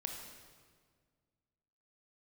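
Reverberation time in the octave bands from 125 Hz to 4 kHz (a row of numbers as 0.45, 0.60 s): 2.4, 2.2, 1.9, 1.6, 1.5, 1.4 s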